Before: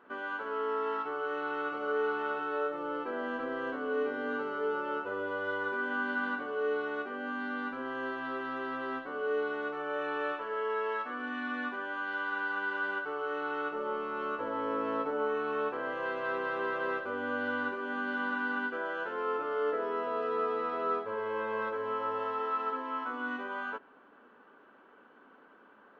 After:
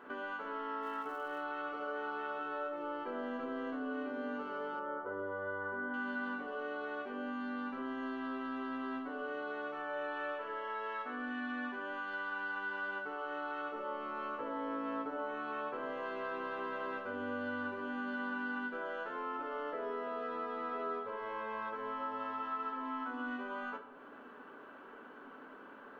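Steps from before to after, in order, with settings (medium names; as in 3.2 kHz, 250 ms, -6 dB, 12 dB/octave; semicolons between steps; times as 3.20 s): 0.82–1.41 s: crackle 260 per s -49 dBFS; 4.79–5.94 s: Savitzky-Golay filter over 41 samples; on a send at -6.5 dB: reverberation RT60 0.65 s, pre-delay 3 ms; on the sum: compression 2:1, threshold -51 dBFS, peak gain reduction 12.5 dB; trim +5 dB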